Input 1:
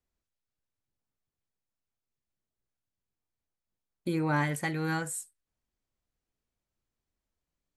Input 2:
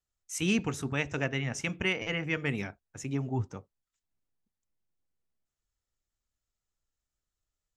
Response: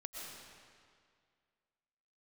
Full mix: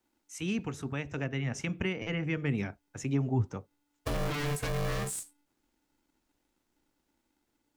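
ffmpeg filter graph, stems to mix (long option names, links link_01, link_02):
-filter_complex "[0:a]aeval=exprs='0.15*sin(PI/2*3.98*val(0)/0.15)':channel_layout=same,aeval=exprs='val(0)*sgn(sin(2*PI*290*n/s))':channel_layout=same,volume=-8dB[link_01];[1:a]highshelf=frequency=4800:gain=-5.5,dynaudnorm=framelen=540:gausssize=5:maxgain=8dB,volume=-4.5dB[link_02];[link_01][link_02]amix=inputs=2:normalize=0,acrossover=split=360[link_03][link_04];[link_04]acompressor=threshold=-37dB:ratio=3[link_05];[link_03][link_05]amix=inputs=2:normalize=0"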